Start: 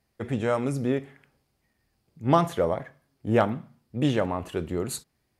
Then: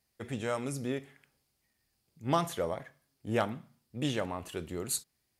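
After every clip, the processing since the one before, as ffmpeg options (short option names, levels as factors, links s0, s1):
-af "highshelf=f=2600:g=12,volume=0.355"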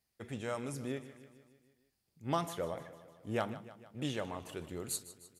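-af "aecho=1:1:152|304|456|608|760|912:0.168|0.101|0.0604|0.0363|0.0218|0.0131,volume=0.562"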